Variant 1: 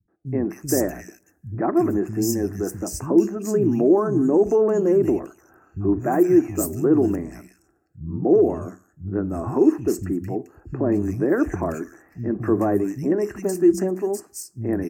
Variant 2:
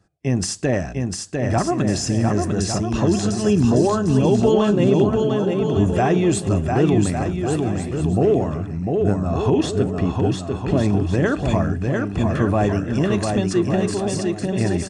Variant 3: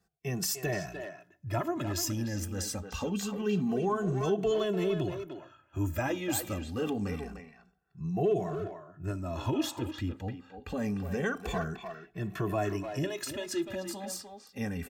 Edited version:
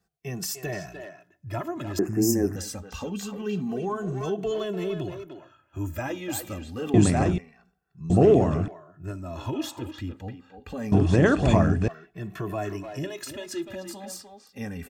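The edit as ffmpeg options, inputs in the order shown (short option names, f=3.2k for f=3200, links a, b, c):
-filter_complex "[1:a]asplit=3[a][b][c];[2:a]asplit=5[d][e][f][g][h];[d]atrim=end=1.992[i];[0:a]atrim=start=1.988:end=2.562[j];[e]atrim=start=2.558:end=6.942[k];[a]atrim=start=6.938:end=7.382[l];[f]atrim=start=7.378:end=8.102[m];[b]atrim=start=8.098:end=8.682[n];[g]atrim=start=8.678:end=10.922[o];[c]atrim=start=10.918:end=11.882[p];[h]atrim=start=11.878[q];[i][j]acrossfade=d=0.004:c1=hsin:c2=hsin[r];[r][k]acrossfade=d=0.004:c1=hsin:c2=hsin[s];[s][l]acrossfade=d=0.004:c1=hsin:c2=hsin[t];[t][m]acrossfade=d=0.004:c1=hsin:c2=hsin[u];[u][n]acrossfade=d=0.004:c1=hsin:c2=hsin[v];[v][o]acrossfade=d=0.004:c1=hsin:c2=hsin[w];[w][p]acrossfade=d=0.004:c1=hsin:c2=hsin[x];[x][q]acrossfade=d=0.004:c1=hsin:c2=hsin"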